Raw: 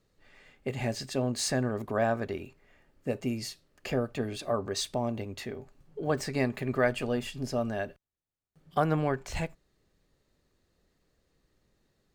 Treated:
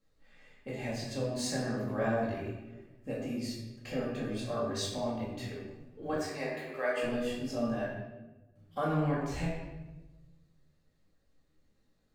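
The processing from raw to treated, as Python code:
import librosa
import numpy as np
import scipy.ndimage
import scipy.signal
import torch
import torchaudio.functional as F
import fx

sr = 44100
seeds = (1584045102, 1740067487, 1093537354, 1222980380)

y = fx.highpass(x, sr, hz=380.0, slope=24, at=(6.13, 7.03))
y = fx.room_shoebox(y, sr, seeds[0], volume_m3=620.0, walls='mixed', distance_m=2.2)
y = fx.detune_double(y, sr, cents=14)
y = y * 10.0 ** (-5.0 / 20.0)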